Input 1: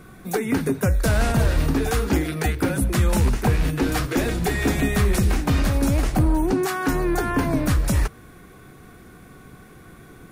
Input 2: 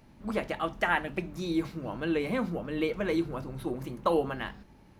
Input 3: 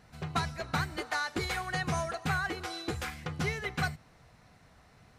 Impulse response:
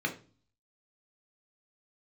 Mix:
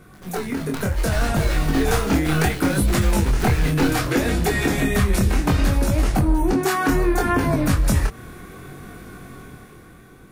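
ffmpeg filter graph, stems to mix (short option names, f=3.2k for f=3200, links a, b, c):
-filter_complex "[0:a]acompressor=threshold=-22dB:ratio=6,volume=1dB[a];[1:a]volume=-18.5dB[b];[2:a]acrusher=bits=4:dc=4:mix=0:aa=0.000001,volume=1.5dB[c];[a][b][c]amix=inputs=3:normalize=0,dynaudnorm=f=140:g=13:m=9dB,flanger=delay=19.5:depth=6.6:speed=0.67"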